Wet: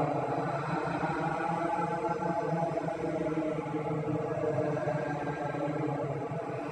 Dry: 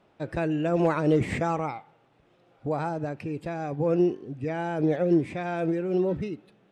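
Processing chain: echo with a slow build-up 125 ms, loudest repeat 5, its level -12 dB; compression, threshold -24 dBFS, peak gain reduction 7.5 dB; Paulstretch 16×, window 0.10 s, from 2.76 s; reverb removal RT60 0.68 s

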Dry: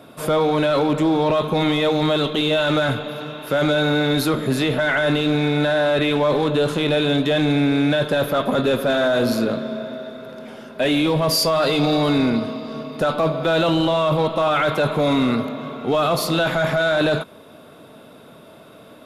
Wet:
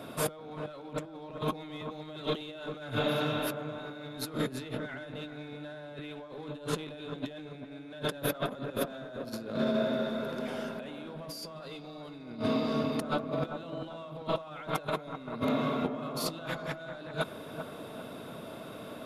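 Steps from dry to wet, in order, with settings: compressor with a negative ratio -27 dBFS, ratio -0.5; feedback echo behind a low-pass 392 ms, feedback 33%, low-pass 1.6 kHz, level -8 dB; trim -8 dB

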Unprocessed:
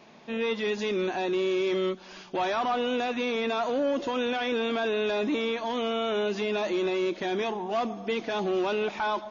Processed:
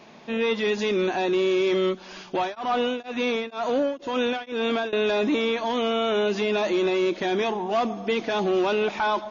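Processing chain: 2.32–4.93 s: tremolo of two beating tones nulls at 2.1 Hz; trim +4.5 dB

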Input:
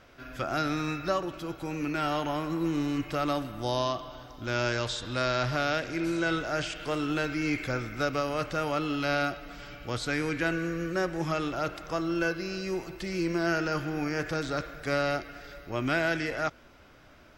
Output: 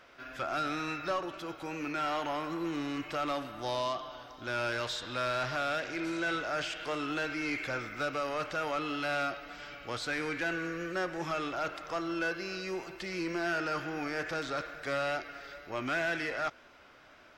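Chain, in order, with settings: wow and flutter 29 cents; overdrive pedal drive 15 dB, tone 4.1 kHz, clips at -15 dBFS; trim -8 dB

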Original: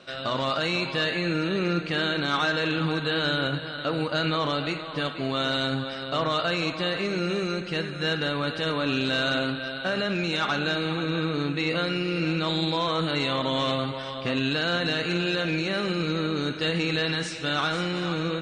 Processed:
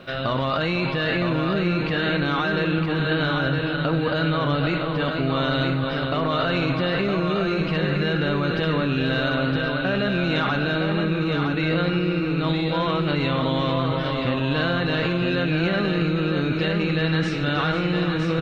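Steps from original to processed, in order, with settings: low-pass 3.1 kHz 12 dB/octave; bass shelf 140 Hz +12 dB; in parallel at +1.5 dB: compressor with a negative ratio -28 dBFS, ratio -0.5; on the sum: bit crusher 11-bit; on a send: delay 963 ms -5 dB; on the sum: trim -3 dB

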